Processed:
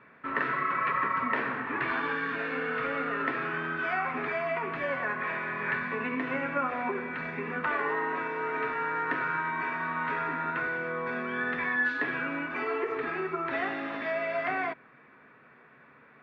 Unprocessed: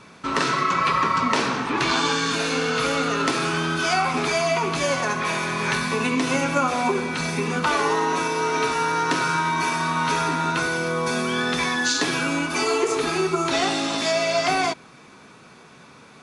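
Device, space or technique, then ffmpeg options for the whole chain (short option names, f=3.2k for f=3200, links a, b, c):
bass cabinet: -af "highpass=82,equalizer=f=100:t=q:w=4:g=-8,equalizer=f=180:t=q:w=4:g=-9,equalizer=f=340:t=q:w=4:g=-4,equalizer=f=840:t=q:w=4:g=-4,equalizer=f=1.8k:t=q:w=4:g=9,lowpass=f=2.3k:w=0.5412,lowpass=f=2.3k:w=1.3066,volume=-8dB"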